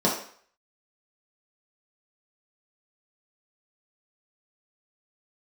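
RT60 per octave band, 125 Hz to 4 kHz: 0.40, 0.45, 0.50, 0.55, 0.55, 0.50 s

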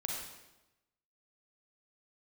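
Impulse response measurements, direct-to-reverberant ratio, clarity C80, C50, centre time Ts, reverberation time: -1.5 dB, 3.0 dB, 0.5 dB, 62 ms, 1.0 s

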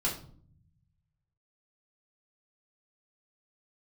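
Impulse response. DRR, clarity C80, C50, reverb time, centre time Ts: -5.0 dB, 13.0 dB, 8.5 dB, 0.55 s, 24 ms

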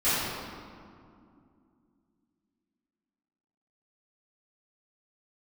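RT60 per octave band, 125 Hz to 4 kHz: 3.0, 3.6, 2.5, 2.3, 1.7, 1.3 s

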